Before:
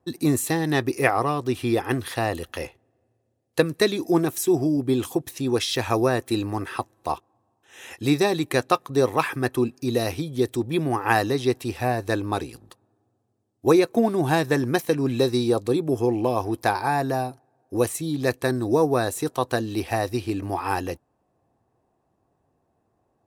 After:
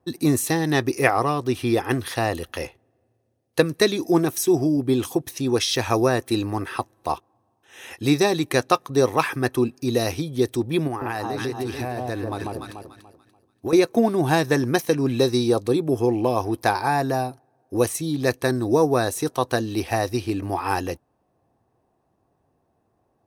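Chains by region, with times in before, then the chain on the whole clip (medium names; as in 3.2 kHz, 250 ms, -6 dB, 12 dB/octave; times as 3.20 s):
10.87–13.73 s: echo whose repeats swap between lows and highs 145 ms, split 1.1 kHz, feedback 52%, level -3 dB + compression 5:1, threshold -25 dBFS
whole clip: band-stop 7.3 kHz, Q 7.8; dynamic bell 6 kHz, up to +5 dB, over -48 dBFS, Q 2.2; trim +1.5 dB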